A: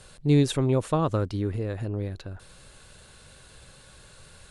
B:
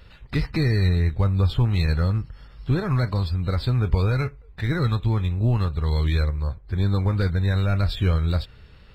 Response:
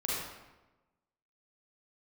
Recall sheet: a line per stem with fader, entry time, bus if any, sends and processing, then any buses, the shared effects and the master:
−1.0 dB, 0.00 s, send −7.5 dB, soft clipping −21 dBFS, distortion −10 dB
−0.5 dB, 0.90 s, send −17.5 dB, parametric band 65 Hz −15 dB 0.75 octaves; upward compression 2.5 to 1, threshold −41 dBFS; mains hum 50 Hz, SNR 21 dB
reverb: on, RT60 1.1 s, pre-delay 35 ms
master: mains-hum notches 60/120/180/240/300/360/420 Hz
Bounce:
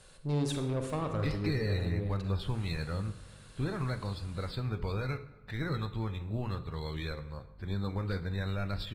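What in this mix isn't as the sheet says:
stem A −1.0 dB → −9.5 dB
stem B −0.5 dB → −10.0 dB

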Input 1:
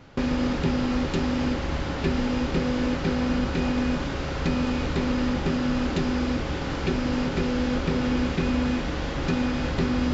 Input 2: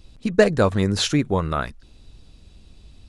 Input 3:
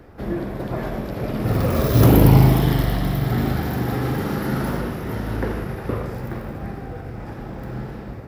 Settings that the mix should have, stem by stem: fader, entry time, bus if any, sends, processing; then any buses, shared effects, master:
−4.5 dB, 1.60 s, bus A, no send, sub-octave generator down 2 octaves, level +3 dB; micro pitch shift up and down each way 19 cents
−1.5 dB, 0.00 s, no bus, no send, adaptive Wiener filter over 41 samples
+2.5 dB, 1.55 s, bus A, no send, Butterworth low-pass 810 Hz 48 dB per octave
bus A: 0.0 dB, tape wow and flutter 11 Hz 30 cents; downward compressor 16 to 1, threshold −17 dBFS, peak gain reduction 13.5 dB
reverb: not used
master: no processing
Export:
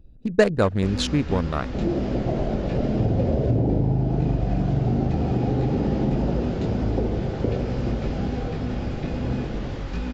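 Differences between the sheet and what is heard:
stem 1: entry 1.60 s → 0.65 s
master: extra parametric band 12,000 Hz −5.5 dB 0.7 octaves

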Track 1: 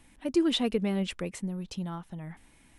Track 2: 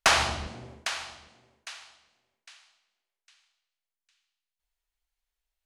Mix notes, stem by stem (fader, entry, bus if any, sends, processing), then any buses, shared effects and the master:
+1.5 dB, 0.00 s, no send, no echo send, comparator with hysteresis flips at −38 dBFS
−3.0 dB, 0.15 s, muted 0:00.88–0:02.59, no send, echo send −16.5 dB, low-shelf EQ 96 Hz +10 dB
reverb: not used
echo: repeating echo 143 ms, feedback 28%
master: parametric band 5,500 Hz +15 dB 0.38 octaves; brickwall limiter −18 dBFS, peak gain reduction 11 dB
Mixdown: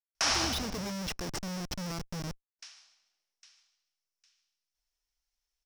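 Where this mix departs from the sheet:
stem 1 +1.5 dB → −5.0 dB
stem 2: missing low-shelf EQ 96 Hz +10 dB

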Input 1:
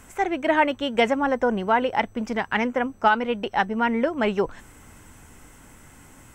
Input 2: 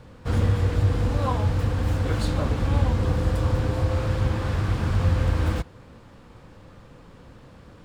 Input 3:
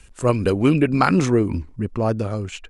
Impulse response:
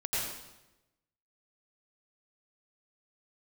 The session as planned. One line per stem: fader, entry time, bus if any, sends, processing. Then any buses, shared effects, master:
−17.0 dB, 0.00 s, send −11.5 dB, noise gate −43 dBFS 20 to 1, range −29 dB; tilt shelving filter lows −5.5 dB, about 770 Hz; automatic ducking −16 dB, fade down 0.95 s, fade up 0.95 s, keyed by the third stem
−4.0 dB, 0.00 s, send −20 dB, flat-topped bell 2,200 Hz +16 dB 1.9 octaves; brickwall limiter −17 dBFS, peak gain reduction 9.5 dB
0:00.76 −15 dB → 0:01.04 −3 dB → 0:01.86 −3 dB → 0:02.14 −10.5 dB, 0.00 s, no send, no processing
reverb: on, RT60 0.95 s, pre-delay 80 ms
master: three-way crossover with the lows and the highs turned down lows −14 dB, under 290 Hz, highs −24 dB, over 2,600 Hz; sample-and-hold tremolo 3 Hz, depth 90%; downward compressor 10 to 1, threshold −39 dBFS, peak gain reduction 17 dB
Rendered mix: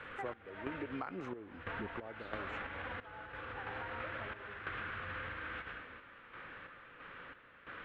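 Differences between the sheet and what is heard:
stem 3 −15.0 dB → −7.5 dB
reverb return +8.5 dB

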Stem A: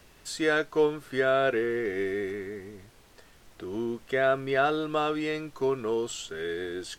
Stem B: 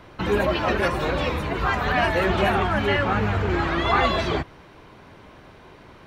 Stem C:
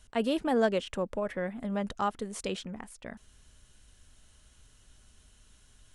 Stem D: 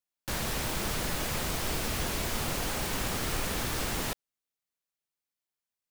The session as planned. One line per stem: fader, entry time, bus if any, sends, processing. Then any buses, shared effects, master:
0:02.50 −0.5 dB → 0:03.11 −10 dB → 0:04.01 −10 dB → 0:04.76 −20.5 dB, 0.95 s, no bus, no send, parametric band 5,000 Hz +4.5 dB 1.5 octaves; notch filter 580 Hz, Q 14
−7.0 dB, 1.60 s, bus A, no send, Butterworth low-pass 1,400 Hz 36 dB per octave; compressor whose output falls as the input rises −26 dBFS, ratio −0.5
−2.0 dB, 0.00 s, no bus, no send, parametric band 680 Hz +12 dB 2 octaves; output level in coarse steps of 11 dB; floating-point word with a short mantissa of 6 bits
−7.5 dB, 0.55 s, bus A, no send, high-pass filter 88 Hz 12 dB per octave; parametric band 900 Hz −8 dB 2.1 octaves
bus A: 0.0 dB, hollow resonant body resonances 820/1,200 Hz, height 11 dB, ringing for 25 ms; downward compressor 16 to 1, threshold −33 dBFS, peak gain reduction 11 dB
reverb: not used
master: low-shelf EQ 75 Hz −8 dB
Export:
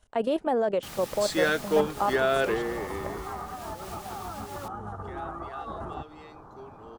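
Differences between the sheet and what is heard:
stem C: missing floating-point word with a short mantissa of 6 bits
master: missing low-shelf EQ 75 Hz −8 dB

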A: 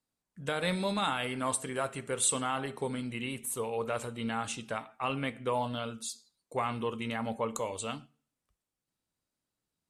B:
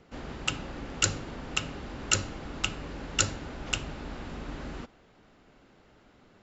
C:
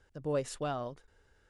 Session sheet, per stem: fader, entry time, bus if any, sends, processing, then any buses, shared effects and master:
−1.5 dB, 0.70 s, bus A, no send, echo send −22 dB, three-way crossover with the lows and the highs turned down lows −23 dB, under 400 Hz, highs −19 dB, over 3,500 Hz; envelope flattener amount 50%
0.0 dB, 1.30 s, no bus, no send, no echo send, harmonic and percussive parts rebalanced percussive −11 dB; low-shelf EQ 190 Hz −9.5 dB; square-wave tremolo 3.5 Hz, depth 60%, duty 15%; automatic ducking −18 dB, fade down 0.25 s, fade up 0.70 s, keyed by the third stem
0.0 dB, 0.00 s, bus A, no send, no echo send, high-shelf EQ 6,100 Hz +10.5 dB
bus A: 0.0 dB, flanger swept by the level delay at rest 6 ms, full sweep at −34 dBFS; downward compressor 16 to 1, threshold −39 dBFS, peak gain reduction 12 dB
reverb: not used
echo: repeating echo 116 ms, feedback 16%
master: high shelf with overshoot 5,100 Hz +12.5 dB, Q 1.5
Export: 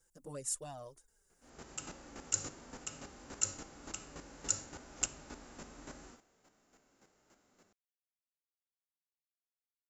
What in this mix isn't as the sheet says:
stem A: muted
stem C 0.0 dB → −9.0 dB

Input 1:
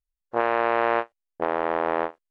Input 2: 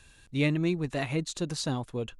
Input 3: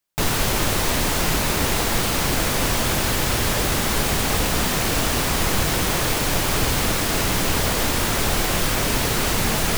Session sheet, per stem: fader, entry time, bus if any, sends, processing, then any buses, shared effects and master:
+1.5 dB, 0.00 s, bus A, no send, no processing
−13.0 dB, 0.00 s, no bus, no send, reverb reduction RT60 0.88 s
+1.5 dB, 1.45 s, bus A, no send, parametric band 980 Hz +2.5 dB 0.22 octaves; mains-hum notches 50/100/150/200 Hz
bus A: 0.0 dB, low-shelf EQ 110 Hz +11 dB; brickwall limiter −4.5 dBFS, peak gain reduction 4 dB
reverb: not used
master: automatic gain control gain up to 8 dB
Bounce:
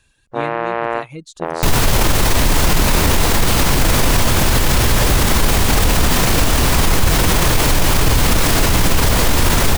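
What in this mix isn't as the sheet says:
stem 2 −13.0 dB → −2.5 dB
stem 3 +1.5 dB → +12.5 dB
master: missing automatic gain control gain up to 8 dB

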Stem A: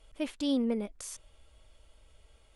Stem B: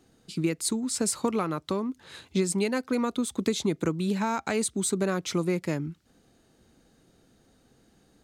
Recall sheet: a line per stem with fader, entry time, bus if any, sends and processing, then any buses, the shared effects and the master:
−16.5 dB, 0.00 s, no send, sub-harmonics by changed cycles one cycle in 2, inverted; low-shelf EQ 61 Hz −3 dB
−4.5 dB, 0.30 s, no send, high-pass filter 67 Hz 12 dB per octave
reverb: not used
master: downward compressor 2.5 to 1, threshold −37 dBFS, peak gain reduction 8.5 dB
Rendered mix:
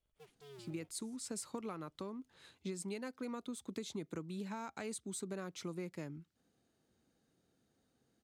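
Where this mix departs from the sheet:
stem A −16.5 dB → −26.0 dB
stem B −4.5 dB → −15.0 dB

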